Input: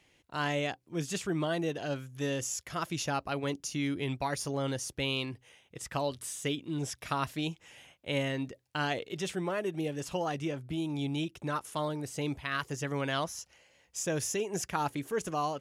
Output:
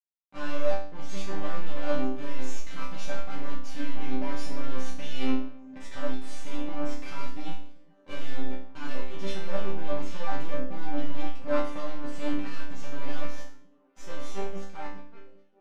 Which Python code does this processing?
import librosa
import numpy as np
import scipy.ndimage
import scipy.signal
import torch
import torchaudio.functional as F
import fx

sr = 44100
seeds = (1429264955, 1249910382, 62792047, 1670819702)

y = fx.fade_out_tail(x, sr, length_s=3.29)
y = fx.fuzz(y, sr, gain_db=47.0, gate_db=-47.0)
y = fx.hum_notches(y, sr, base_hz=50, count=9)
y = np.maximum(y, 0.0)
y = fx.spacing_loss(y, sr, db_at_10k=22)
y = fx.resonator_bank(y, sr, root=55, chord='sus4', decay_s=0.63)
y = fx.echo_stepped(y, sr, ms=394, hz=200.0, octaves=0.7, feedback_pct=70, wet_db=-8.5)
y = fx.band_widen(y, sr, depth_pct=70)
y = y * librosa.db_to_amplitude(7.5)